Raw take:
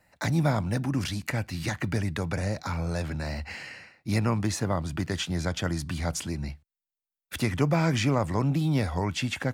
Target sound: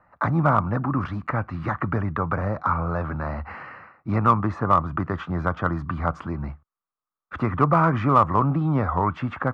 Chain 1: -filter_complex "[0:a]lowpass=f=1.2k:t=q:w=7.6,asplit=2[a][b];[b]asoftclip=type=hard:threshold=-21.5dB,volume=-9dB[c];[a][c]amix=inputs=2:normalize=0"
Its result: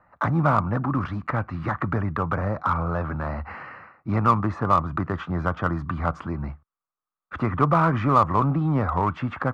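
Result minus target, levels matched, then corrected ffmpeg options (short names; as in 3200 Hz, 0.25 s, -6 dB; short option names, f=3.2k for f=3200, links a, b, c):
hard clip: distortion +8 dB
-filter_complex "[0:a]lowpass=f=1.2k:t=q:w=7.6,asplit=2[a][b];[b]asoftclip=type=hard:threshold=-14dB,volume=-9dB[c];[a][c]amix=inputs=2:normalize=0"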